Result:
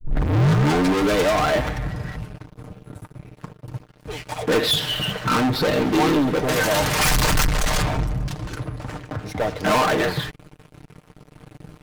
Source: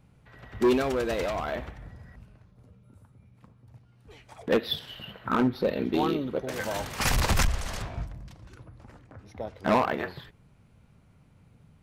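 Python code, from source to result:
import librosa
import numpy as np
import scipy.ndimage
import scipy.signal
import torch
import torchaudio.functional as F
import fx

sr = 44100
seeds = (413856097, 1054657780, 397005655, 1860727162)

y = fx.tape_start_head(x, sr, length_s=1.22)
y = fx.leveller(y, sr, passes=5)
y = y + 0.5 * np.pad(y, (int(6.6 * sr / 1000.0), 0))[:len(y)]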